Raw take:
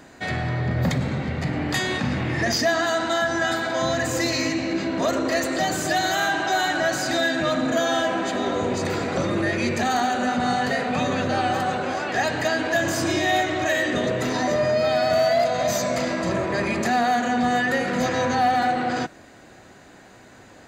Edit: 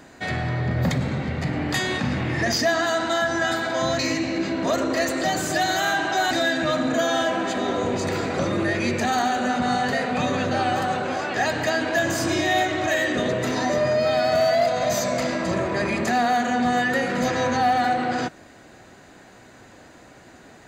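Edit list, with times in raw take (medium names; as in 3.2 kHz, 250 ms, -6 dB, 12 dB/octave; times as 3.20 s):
3.99–4.34 s: delete
6.66–7.09 s: delete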